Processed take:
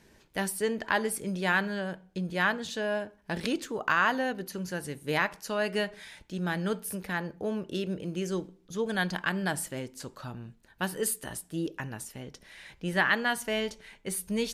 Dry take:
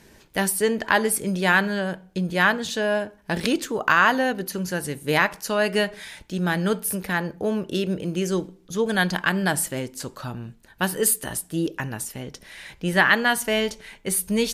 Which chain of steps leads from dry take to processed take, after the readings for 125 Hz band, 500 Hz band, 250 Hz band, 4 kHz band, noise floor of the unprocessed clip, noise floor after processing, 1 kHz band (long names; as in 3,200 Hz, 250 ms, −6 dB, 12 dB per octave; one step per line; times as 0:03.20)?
−7.5 dB, −7.5 dB, −7.5 dB, −8.0 dB, −54 dBFS, −62 dBFS, −7.5 dB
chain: high-shelf EQ 11,000 Hz −7 dB
level −7.5 dB